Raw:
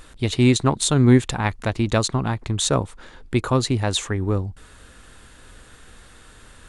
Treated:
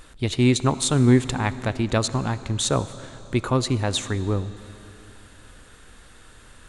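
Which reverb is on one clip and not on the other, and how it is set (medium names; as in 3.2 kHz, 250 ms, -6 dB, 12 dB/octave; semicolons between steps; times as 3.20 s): algorithmic reverb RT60 3.3 s, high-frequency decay 0.9×, pre-delay 25 ms, DRR 14.5 dB; trim -2 dB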